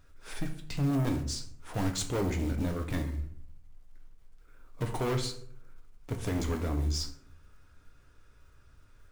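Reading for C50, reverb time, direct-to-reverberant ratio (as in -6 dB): 9.5 dB, 0.65 s, 4.0 dB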